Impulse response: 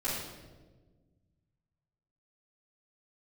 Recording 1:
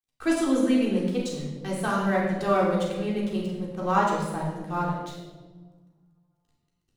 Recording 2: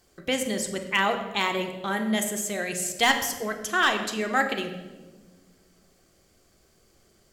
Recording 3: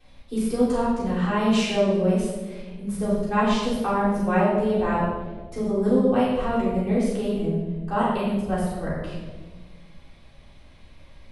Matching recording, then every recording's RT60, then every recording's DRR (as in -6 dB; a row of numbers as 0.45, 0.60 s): 3; 1.4, 1.4, 1.4 s; -5.0, 4.5, -13.5 dB